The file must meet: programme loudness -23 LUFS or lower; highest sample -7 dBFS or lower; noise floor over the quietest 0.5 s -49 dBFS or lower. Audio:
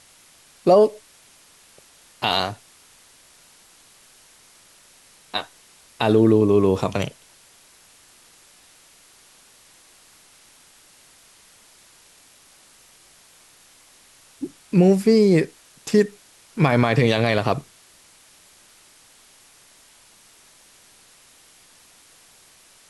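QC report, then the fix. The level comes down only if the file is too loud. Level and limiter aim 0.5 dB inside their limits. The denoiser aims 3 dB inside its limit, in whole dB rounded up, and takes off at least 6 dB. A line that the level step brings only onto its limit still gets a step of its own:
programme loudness -19.5 LUFS: fail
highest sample -6.0 dBFS: fail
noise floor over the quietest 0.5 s -53 dBFS: OK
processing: gain -4 dB

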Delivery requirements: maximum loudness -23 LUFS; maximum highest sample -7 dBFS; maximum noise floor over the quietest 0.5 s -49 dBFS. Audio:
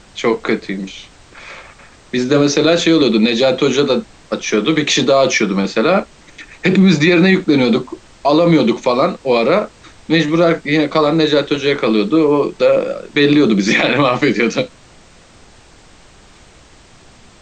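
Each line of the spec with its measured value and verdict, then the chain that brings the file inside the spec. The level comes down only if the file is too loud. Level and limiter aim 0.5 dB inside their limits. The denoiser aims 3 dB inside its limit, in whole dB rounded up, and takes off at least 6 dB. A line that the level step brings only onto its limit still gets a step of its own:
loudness -14.0 LUFS: fail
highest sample -3.0 dBFS: fail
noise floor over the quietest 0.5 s -44 dBFS: fail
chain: gain -9.5 dB

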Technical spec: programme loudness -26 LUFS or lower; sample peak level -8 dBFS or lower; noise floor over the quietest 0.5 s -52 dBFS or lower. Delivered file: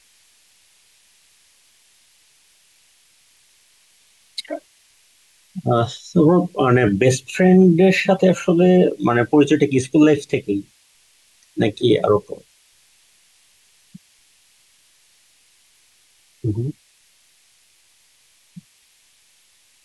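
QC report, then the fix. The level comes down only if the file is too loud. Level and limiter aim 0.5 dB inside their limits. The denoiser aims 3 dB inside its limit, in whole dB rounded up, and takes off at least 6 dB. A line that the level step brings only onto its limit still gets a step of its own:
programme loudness -17.0 LUFS: fail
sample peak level -4.5 dBFS: fail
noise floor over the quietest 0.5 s -57 dBFS: OK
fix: gain -9.5 dB

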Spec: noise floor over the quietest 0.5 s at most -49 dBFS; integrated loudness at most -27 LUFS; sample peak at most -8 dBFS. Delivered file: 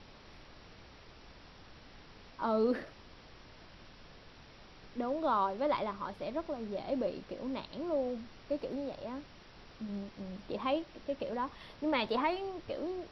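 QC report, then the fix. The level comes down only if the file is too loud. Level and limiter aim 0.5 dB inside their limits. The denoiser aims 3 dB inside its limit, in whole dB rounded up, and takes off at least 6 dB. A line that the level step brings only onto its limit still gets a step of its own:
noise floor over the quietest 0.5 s -55 dBFS: OK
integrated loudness -36.5 LUFS: OK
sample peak -19.5 dBFS: OK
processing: none

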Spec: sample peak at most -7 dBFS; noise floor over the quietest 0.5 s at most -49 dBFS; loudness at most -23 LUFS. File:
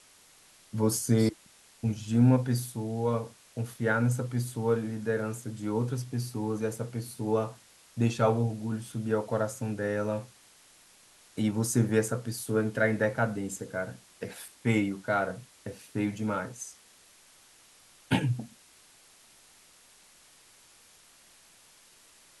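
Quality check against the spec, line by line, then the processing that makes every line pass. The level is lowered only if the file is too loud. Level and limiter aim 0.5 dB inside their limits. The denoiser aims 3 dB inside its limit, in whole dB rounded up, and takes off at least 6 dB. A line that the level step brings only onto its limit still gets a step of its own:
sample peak -12.0 dBFS: OK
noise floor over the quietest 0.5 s -58 dBFS: OK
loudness -30.0 LUFS: OK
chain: none

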